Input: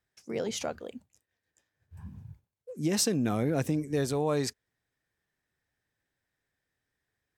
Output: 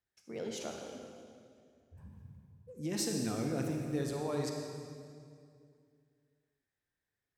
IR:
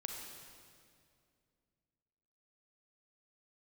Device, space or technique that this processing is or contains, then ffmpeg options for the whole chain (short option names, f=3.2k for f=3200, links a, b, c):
stairwell: -filter_complex "[0:a]asettb=1/sr,asplit=3[a][b][c];[a]atrim=end=0.934[d];[b]atrim=start=0.93:end=1.98,asetpts=PTS-STARTPTS,afade=t=in:d=0.004:c=qsin,afade=t=out:st=1.046:d=0.004:c=qsin,bass=f=250:g=3,treble=f=4k:g=-13[e];[c]atrim=start=1.976[f];[d][e]acrossfade=d=0.004:c1=hsin:c2=qsin[g];[g][f]acrossfade=d=0.004:c1=qsin:c2=hsin[h];[1:a]atrim=start_sample=2205[i];[h][i]afir=irnorm=-1:irlink=0,volume=-6dB"